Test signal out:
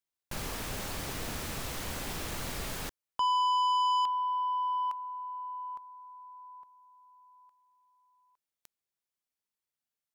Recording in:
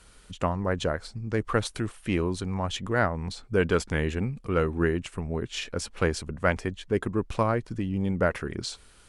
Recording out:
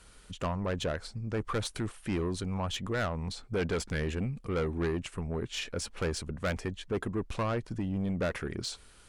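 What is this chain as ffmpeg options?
-af "asoftclip=type=tanh:threshold=0.0631,volume=0.841"

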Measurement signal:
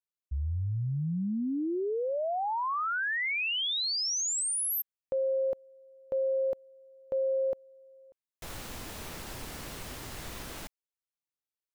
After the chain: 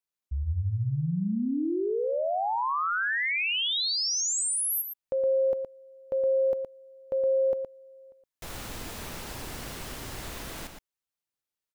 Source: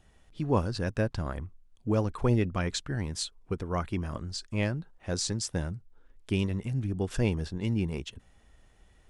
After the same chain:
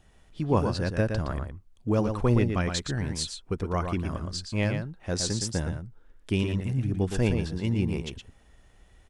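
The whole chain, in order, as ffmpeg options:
-filter_complex "[0:a]asplit=2[s0][s1];[s1]adelay=116.6,volume=0.501,highshelf=f=4000:g=-2.62[s2];[s0][s2]amix=inputs=2:normalize=0,volume=1.26"

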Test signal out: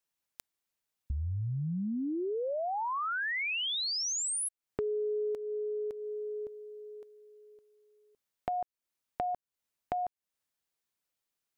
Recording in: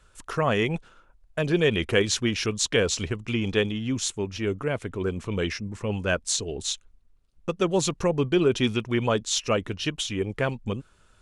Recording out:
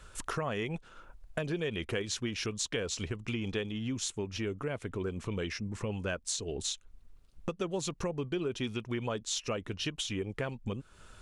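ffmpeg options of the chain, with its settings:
-af "acompressor=threshold=0.00891:ratio=4,volume=2"

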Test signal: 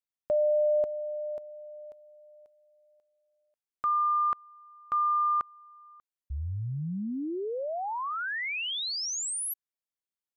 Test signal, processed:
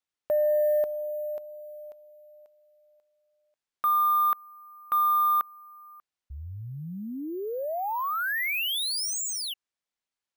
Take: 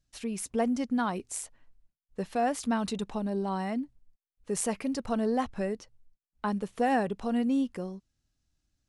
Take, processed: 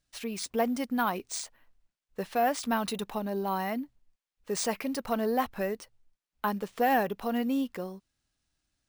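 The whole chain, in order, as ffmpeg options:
-filter_complex "[0:a]asplit=2[s0][s1];[s1]highpass=f=720:p=1,volume=2.82,asoftclip=type=tanh:threshold=0.2[s2];[s0][s2]amix=inputs=2:normalize=0,lowpass=f=6100:p=1,volume=0.501,acrusher=samples=3:mix=1:aa=0.000001"

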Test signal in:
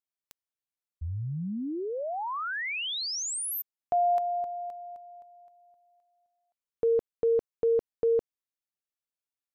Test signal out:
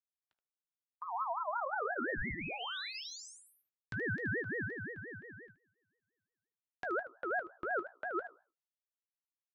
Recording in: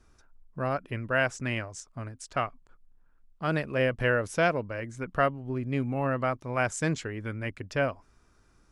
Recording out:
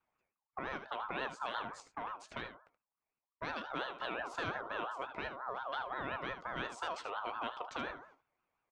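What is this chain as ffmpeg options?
-filter_complex "[0:a]highpass=100,aemphasis=mode=reproduction:type=50kf,bandreject=f=60:t=h:w=6,bandreject=f=120:t=h:w=6,bandreject=f=180:t=h:w=6,bandreject=f=240:t=h:w=6,bandreject=f=300:t=h:w=6,bandreject=f=360:t=h:w=6,bandreject=f=420:t=h:w=6,bandreject=f=480:t=h:w=6,bandreject=f=540:t=h:w=6,agate=range=0.1:threshold=0.00158:ratio=16:release=246:detection=peak,acrossover=split=690|2300|7700[s0][s1][s2][s3];[s0]acompressor=threshold=0.0112:ratio=4[s4];[s1]acompressor=threshold=0.002:ratio=4[s5];[s2]acompressor=threshold=0.00562:ratio=4[s6];[s3]acompressor=threshold=0.002:ratio=4[s7];[s4][s5][s6][s7]amix=inputs=4:normalize=0,acrossover=split=1900[s8][s9];[s8]alimiter=level_in=2.99:limit=0.0631:level=0:latency=1:release=244,volume=0.335[s10];[s9]adynamicsmooth=sensitivity=3:basefreq=4200[s11];[s10][s11]amix=inputs=2:normalize=0,flanger=delay=0.8:depth=8.4:regen=-69:speed=0.32:shape=triangular,asplit=2[s12][s13];[s13]aecho=0:1:17|76:0.211|0.282[s14];[s12][s14]amix=inputs=2:normalize=0,aeval=exprs='val(0)*sin(2*PI*1000*n/s+1000*0.2/5.7*sin(2*PI*5.7*n/s))':c=same,volume=3.16"

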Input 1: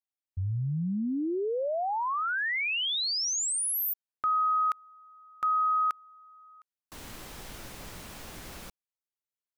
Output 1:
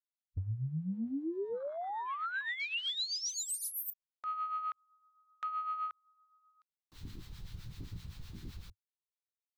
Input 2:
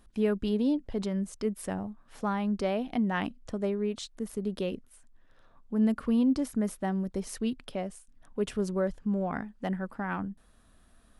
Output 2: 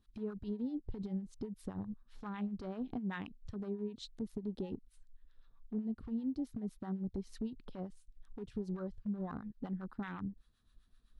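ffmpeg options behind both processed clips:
-filter_complex "[0:a]afwtdn=0.0158,equalizer=f=100:t=o:w=0.67:g=7,equalizer=f=630:t=o:w=0.67:g=-10,equalizer=f=4000:t=o:w=0.67:g=9,equalizer=f=10000:t=o:w=0.67:g=-5,acompressor=threshold=0.0158:ratio=12:attack=0.24:release=183:knee=6:detection=rms,acrossover=split=830[s0][s1];[s0]aeval=exprs='val(0)*(1-0.7/2+0.7/2*cos(2*PI*7.8*n/s))':c=same[s2];[s1]aeval=exprs='val(0)*(1-0.7/2-0.7/2*cos(2*PI*7.8*n/s))':c=same[s3];[s2][s3]amix=inputs=2:normalize=0,volume=1.78"

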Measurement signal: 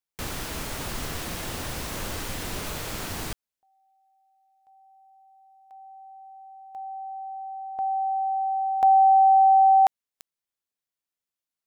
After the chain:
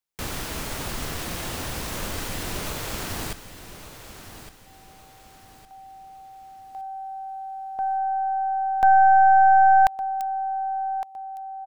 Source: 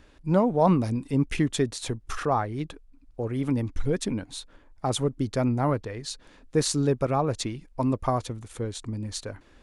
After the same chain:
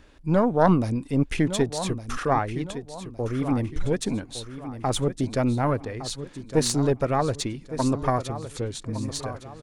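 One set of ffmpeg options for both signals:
-af "aecho=1:1:1161|2322|3483|4644:0.251|0.0955|0.0363|0.0138,aeval=exprs='0.335*(cos(1*acos(clip(val(0)/0.335,-1,1)))-cos(1*PI/2))+0.0944*(cos(2*acos(clip(val(0)/0.335,-1,1)))-cos(2*PI/2))':c=same,volume=1.19"

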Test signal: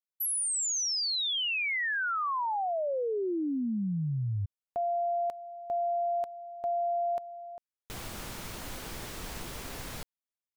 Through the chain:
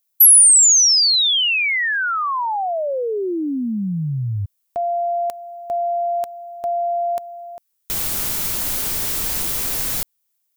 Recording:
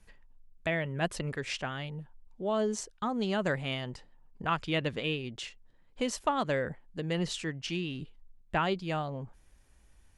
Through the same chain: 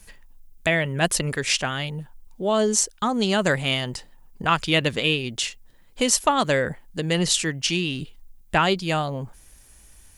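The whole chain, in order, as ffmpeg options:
-af "aemphasis=mode=production:type=75kf,acontrast=33,volume=1.41"

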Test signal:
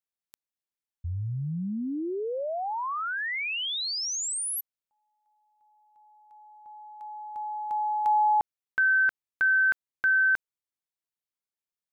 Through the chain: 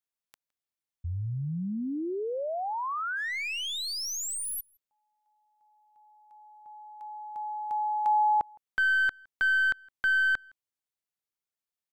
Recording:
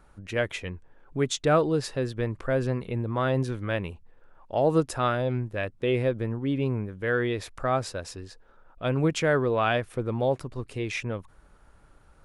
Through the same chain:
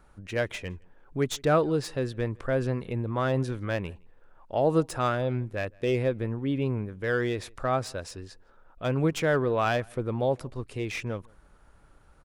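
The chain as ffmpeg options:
-filter_complex "[0:a]acrossover=split=1600[s0][s1];[s1]aeval=exprs='clip(val(0),-1,0.0188)':c=same[s2];[s0][s2]amix=inputs=2:normalize=0,asplit=2[s3][s4];[s4]adelay=163.3,volume=0.0398,highshelf=f=4000:g=-3.67[s5];[s3][s5]amix=inputs=2:normalize=0,volume=0.891"

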